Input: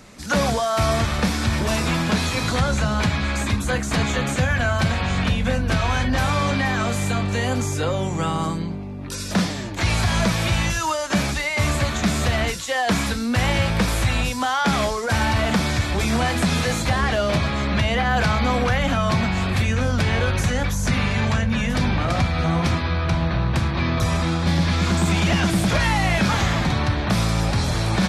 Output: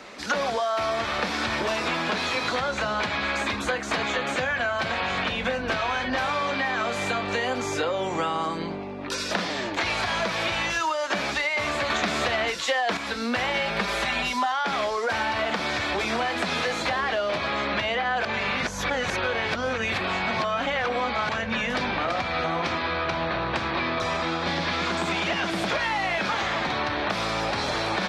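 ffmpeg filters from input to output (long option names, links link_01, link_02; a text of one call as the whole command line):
ffmpeg -i in.wav -filter_complex "[0:a]asettb=1/sr,asplit=3[link_01][link_02][link_03];[link_01]atrim=end=13.544[link_04];[link_02]atrim=start=13.54:end=14.52,asetpts=PTS-STARTPTS,afade=type=in:duration=0.004:curve=qsin,afade=type=out:start_time=0.976:duration=0.004:curve=qsin,aecho=1:1:5:0.87,atrim=end_sample=43218[link_05];[link_03]atrim=start=14.516[link_06];[link_04][link_05]acrossfade=duration=0.004:curve1=hsin:curve2=qsin[link_07];[link_07][link_06]acrossfade=duration=0.004:curve1=qsin:curve2=hsin,asettb=1/sr,asplit=3[link_08][link_09][link_10];[link_08]atrim=end=22.514[link_11];[link_09]atrim=start=22.51:end=24.73,asetpts=PTS-STARTPTS,afade=type=in:duration=0.004:curve=qsin,afade=type=out:start_time=2.216:duration=0.004:curve=qsin,lowpass=10000[link_12];[link_10]atrim=start=24.726[link_13];[link_11][link_12]acrossfade=duration=0.004:curve1=hsin:curve2=qsin[link_14];[link_14][link_13]acrossfade=duration=0.004:curve1=qsin:curve2=hsin,asplit=5[link_15][link_16][link_17][link_18][link_19];[link_15]atrim=end=11.902[link_20];[link_16]atrim=start=11.898:end=12.972,asetpts=PTS-STARTPTS,volume=7.5dB[link_21];[link_17]atrim=start=12.968:end=18.252[link_22];[link_18]atrim=start=18.248:end=21.292,asetpts=PTS-STARTPTS,areverse[link_23];[link_19]atrim=start=21.288[link_24];[link_20][link_21]acrossfade=duration=0.004:curve1=hsin:curve2=hsin[link_25];[link_25][link_22]acrossfade=duration=0.004:curve1=hsin:curve2=hsin[link_26];[link_26][link_23]acrossfade=duration=0.004:curve1=hsin:curve2=hsin[link_27];[link_27][link_24]acrossfade=duration=0.004:curve1=hsin:curve2=hsin,acrossover=split=300 5100:gain=0.1 1 0.141[link_28][link_29][link_30];[link_28][link_29][link_30]amix=inputs=3:normalize=0,acompressor=threshold=-30dB:ratio=6,volume=6.5dB" out.wav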